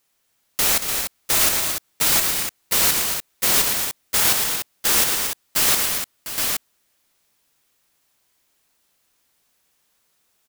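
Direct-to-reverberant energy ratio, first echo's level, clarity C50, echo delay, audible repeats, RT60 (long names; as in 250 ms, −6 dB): no reverb audible, −14.0 dB, no reverb audible, 52 ms, 5, no reverb audible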